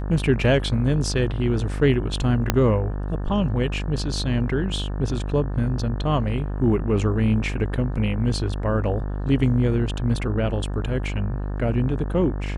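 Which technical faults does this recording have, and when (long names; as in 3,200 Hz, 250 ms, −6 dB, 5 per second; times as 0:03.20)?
mains buzz 50 Hz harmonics 36 −27 dBFS
0:02.50: click −3 dBFS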